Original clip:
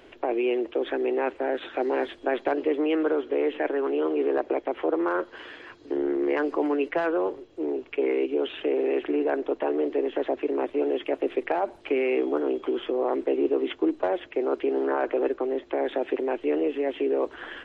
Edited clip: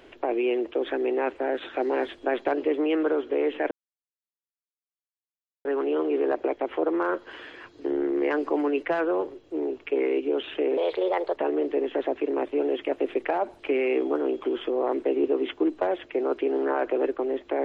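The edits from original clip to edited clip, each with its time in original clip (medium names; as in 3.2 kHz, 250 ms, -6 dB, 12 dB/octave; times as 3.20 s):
3.71 s: insert silence 1.94 s
8.83–9.58 s: speed 126%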